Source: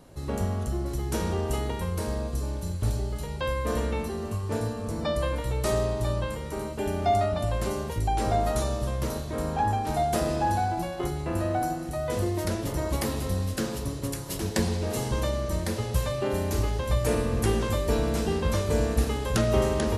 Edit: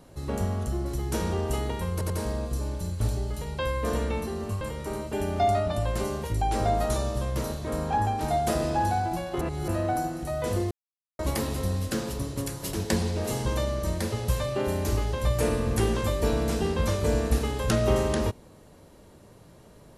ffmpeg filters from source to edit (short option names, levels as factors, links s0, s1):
-filter_complex "[0:a]asplit=8[s0][s1][s2][s3][s4][s5][s6][s7];[s0]atrim=end=2.012[s8];[s1]atrim=start=1.918:end=2.012[s9];[s2]atrim=start=1.918:end=4.432[s10];[s3]atrim=start=6.268:end=11.072[s11];[s4]atrim=start=11.068:end=11.342,asetpts=PTS-STARTPTS,areverse[s12];[s5]atrim=start=11.338:end=12.37,asetpts=PTS-STARTPTS,afade=t=out:st=1.028:d=0.004:c=hsin[s13];[s6]atrim=start=12.37:end=12.85,asetpts=PTS-STARTPTS,volume=0[s14];[s7]atrim=start=12.85,asetpts=PTS-STARTPTS,afade=t=in:d=0.004:c=hsin[s15];[s8][s9]acrossfade=d=0.004:c1=hsin:c2=hsin[s16];[s16][s10]acrossfade=d=0.004:c1=hsin:c2=hsin[s17];[s17][s11]acrossfade=d=0.004:c1=hsin:c2=hsin[s18];[s18][s12]acrossfade=d=0.004:c1=hsin:c2=hsin[s19];[s13][s14][s15]concat=n=3:v=0:a=1[s20];[s19][s20]acrossfade=d=0.004:c1=hsin:c2=hsin"